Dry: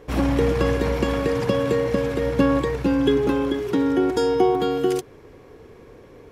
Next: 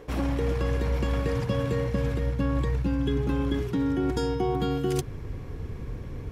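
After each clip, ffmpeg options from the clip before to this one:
ffmpeg -i in.wav -af "asubboost=boost=7.5:cutoff=160,areverse,acompressor=threshold=-26dB:ratio=6,areverse,volume=2.5dB" out.wav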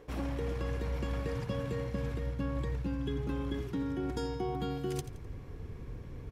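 ffmpeg -i in.wav -af "aecho=1:1:85|170|255|340:0.2|0.0798|0.0319|0.0128,volume=-8dB" out.wav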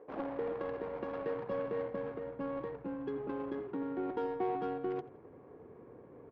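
ffmpeg -i in.wav -af "highpass=460,lowpass=4100,aemphasis=mode=reproduction:type=50fm,adynamicsmooth=sensitivity=3:basefreq=780,volume=6dB" out.wav

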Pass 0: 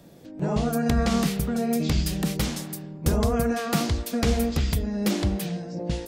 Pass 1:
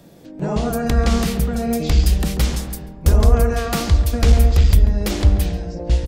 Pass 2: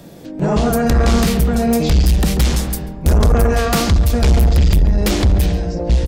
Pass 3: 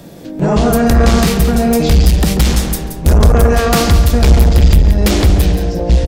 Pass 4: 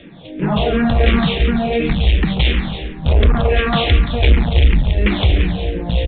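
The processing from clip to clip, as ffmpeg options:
ffmpeg -i in.wav -filter_complex "[0:a]asubboost=boost=9.5:cutoff=57,aeval=exprs='clip(val(0),-1,0.282)':channel_layout=same,asplit=2[link_01][link_02];[link_02]adelay=139,lowpass=frequency=1000:poles=1,volume=-7dB,asplit=2[link_03][link_04];[link_04]adelay=139,lowpass=frequency=1000:poles=1,volume=0.5,asplit=2[link_05][link_06];[link_06]adelay=139,lowpass=frequency=1000:poles=1,volume=0.5,asplit=2[link_07][link_08];[link_08]adelay=139,lowpass=frequency=1000:poles=1,volume=0.5,asplit=2[link_09][link_10];[link_10]adelay=139,lowpass=frequency=1000:poles=1,volume=0.5,asplit=2[link_11][link_12];[link_12]adelay=139,lowpass=frequency=1000:poles=1,volume=0.5[link_13];[link_01][link_03][link_05][link_07][link_09][link_11][link_13]amix=inputs=7:normalize=0,volume=4dB" out.wav
ffmpeg -i in.wav -af "asoftclip=type=tanh:threshold=-15.5dB,volume=7.5dB" out.wav
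ffmpeg -i in.wav -af "aecho=1:1:176|352|528:0.335|0.0971|0.0282,volume=3.5dB" out.wav
ffmpeg -i in.wav -filter_complex "[0:a]aexciter=amount=3.1:drive=5.6:freq=2000,aresample=8000,aresample=44100,asplit=2[link_01][link_02];[link_02]afreqshift=-2.8[link_03];[link_01][link_03]amix=inputs=2:normalize=1,volume=-2dB" out.wav

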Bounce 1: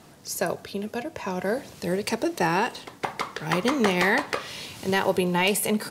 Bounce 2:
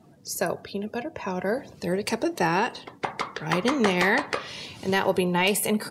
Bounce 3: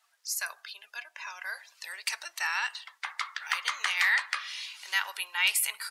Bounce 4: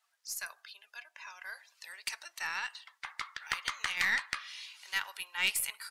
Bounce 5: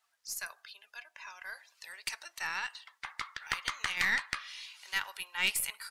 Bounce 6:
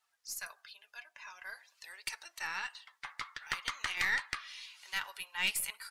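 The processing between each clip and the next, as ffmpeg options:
ffmpeg -i in.wav -af "afftdn=noise_reduction=15:noise_floor=-47" out.wav
ffmpeg -i in.wav -af "highpass=frequency=1300:width=0.5412,highpass=frequency=1300:width=1.3066" out.wav
ffmpeg -i in.wav -af "aeval=exprs='0.299*(cos(1*acos(clip(val(0)/0.299,-1,1)))-cos(1*PI/2))+0.0335*(cos(2*acos(clip(val(0)/0.299,-1,1)))-cos(2*PI/2))+0.0237*(cos(3*acos(clip(val(0)/0.299,-1,1)))-cos(3*PI/2))+0.0075*(cos(7*acos(clip(val(0)/0.299,-1,1)))-cos(7*PI/2))':channel_layout=same,volume=-2.5dB" out.wav
ffmpeg -i in.wav -af "lowshelf=frequency=440:gain=5.5" out.wav
ffmpeg -i in.wav -af "flanger=delay=2.2:depth=4.9:regen=-42:speed=0.48:shape=sinusoidal,volume=1.5dB" out.wav

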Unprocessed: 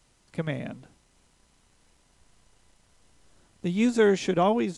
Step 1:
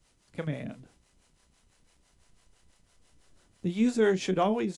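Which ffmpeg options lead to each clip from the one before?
ffmpeg -i in.wav -filter_complex "[0:a]equalizer=frequency=920:width_type=o:width=0.77:gain=-2.5,asplit=2[link_01][link_02];[link_02]adelay=32,volume=-12dB[link_03];[link_01][link_03]amix=inputs=2:normalize=0,acrossover=split=420[link_04][link_05];[link_04]aeval=exprs='val(0)*(1-0.7/2+0.7/2*cos(2*PI*6*n/s))':channel_layout=same[link_06];[link_05]aeval=exprs='val(0)*(1-0.7/2-0.7/2*cos(2*PI*6*n/s))':channel_layout=same[link_07];[link_06][link_07]amix=inputs=2:normalize=0" out.wav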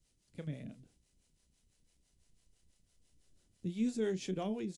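ffmpeg -i in.wav -af "equalizer=frequency=1100:width_type=o:width=2.1:gain=-12.5,volume=-6.5dB" out.wav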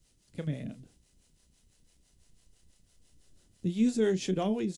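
ffmpeg -i in.wav -af "bandreject=frequency=2300:width=23,volume=7.5dB" out.wav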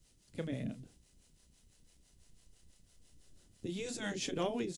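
ffmpeg -i in.wav -af "afftfilt=real='re*lt(hypot(re,im),0.224)':imag='im*lt(hypot(re,im),0.224)':win_size=1024:overlap=0.75" out.wav

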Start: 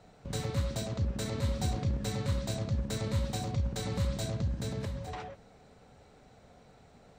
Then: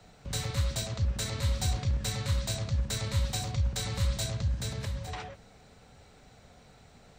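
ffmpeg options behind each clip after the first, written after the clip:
ffmpeg -i in.wav -filter_complex "[0:a]lowshelf=frequency=200:gain=9,acrossover=split=150|460|4300[link_01][link_02][link_03][link_04];[link_02]acompressor=threshold=-44dB:ratio=6[link_05];[link_01][link_05][link_03][link_04]amix=inputs=4:normalize=0,tiltshelf=frequency=1100:gain=-5.5,volume=1.5dB" out.wav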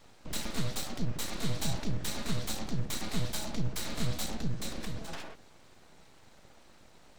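ffmpeg -i in.wav -af "aeval=exprs='abs(val(0))':channel_layout=same" out.wav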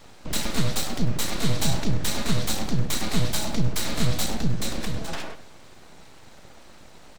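ffmpeg -i in.wav -af "aecho=1:1:100|200|300:0.158|0.0523|0.0173,volume=9dB" out.wav

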